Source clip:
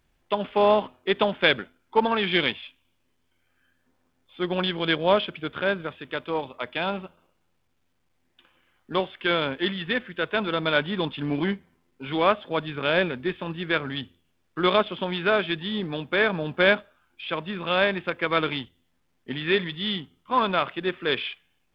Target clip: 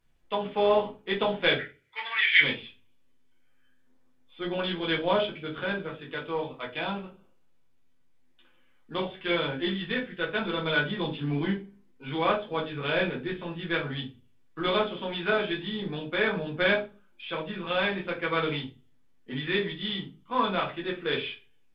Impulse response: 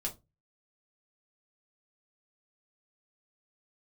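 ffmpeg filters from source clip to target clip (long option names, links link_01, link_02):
-filter_complex "[0:a]asplit=3[link_01][link_02][link_03];[link_01]afade=type=out:start_time=1.56:duration=0.02[link_04];[link_02]highpass=frequency=2000:width_type=q:width=5.7,afade=type=in:start_time=1.56:duration=0.02,afade=type=out:start_time=2.4:duration=0.02[link_05];[link_03]afade=type=in:start_time=2.4:duration=0.02[link_06];[link_04][link_05][link_06]amix=inputs=3:normalize=0[link_07];[1:a]atrim=start_sample=2205,asetrate=29988,aresample=44100[link_08];[link_07][link_08]afir=irnorm=-1:irlink=0,volume=-8dB"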